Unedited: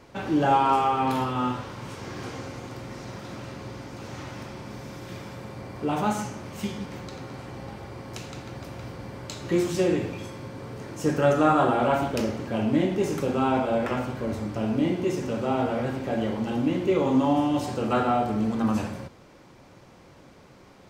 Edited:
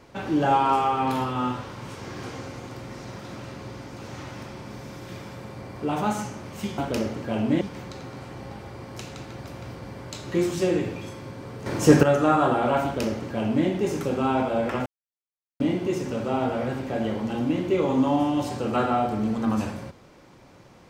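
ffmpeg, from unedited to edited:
-filter_complex "[0:a]asplit=7[s0][s1][s2][s3][s4][s5][s6];[s0]atrim=end=6.782[s7];[s1]atrim=start=12.008:end=12.842[s8];[s2]atrim=start=6.778:end=10.832[s9];[s3]atrim=start=10.828:end=11.202,asetpts=PTS-STARTPTS,volume=3.16[s10];[s4]atrim=start=11.198:end=14.03,asetpts=PTS-STARTPTS,afade=t=out:st=2.828:d=0.004:c=hsin[s11];[s5]atrim=start=14.03:end=14.77,asetpts=PTS-STARTPTS,volume=0[s12];[s6]atrim=start=14.77,asetpts=PTS-STARTPTS,afade=t=in:d=0.004:c=hsin[s13];[s7][s8]acrossfade=d=0.004:c1=hsin:c2=hsin[s14];[s14][s9]acrossfade=d=0.004:c1=hsin:c2=hsin[s15];[s15][s10]acrossfade=d=0.004:c1=hsin:c2=hsin[s16];[s11][s12][s13]concat=n=3:v=0:a=1[s17];[s16][s17]acrossfade=d=0.004:c1=hsin:c2=hsin"

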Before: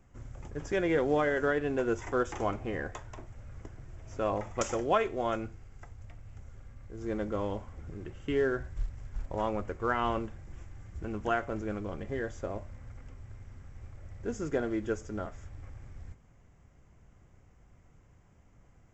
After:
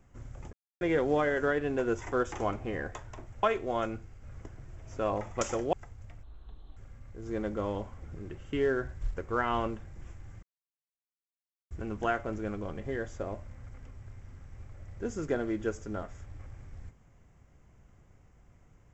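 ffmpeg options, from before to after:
-filter_complex "[0:a]asplit=10[s0][s1][s2][s3][s4][s5][s6][s7][s8][s9];[s0]atrim=end=0.53,asetpts=PTS-STARTPTS,afade=t=out:st=0.526:d=0.004:c=hsin[s10];[s1]atrim=start=0.53:end=0.81,asetpts=PTS-STARTPTS,volume=0[s11];[s2]atrim=start=0.81:end=3.432,asetpts=PTS-STARTPTS,afade=t=in:d=0.004:c=hsin[s12];[s3]atrim=start=4.928:end=5.732[s13];[s4]atrim=start=3.428:end=4.932[s14];[s5]atrim=start=5.728:end=6.234[s15];[s6]atrim=start=6.23:end=6.52,asetpts=PTS-STARTPTS,asetrate=23814,aresample=44100,atrim=end_sample=23683,asetpts=PTS-STARTPTS[s16];[s7]atrim=start=6.516:end=8.922[s17];[s8]atrim=start=9.678:end=10.94,asetpts=PTS-STARTPTS,afade=t=out:st=1.258:d=0.004:c=hsin,apad=pad_dur=1.28[s18];[s9]atrim=start=10.94,asetpts=PTS-STARTPTS,afade=t=in:d=0.004:c=hsin[s19];[s10][s11][s12]concat=n=3:v=0:a=1[s20];[s20][s13]acrossfade=d=0.004:c1=hsin:c2=hsin[s21];[s21][s14]acrossfade=d=0.004:c1=hsin:c2=hsin[s22];[s22][s15]acrossfade=d=0.004:c1=hsin:c2=hsin[s23];[s23][s16]acrossfade=d=0.004:c1=hsin:c2=hsin[s24];[s24][s17]acrossfade=d=0.004:c1=hsin:c2=hsin[s25];[s18][s19]concat=n=2:v=0:a=1[s26];[s25][s26]acrossfade=d=0.004:c1=hsin:c2=hsin"

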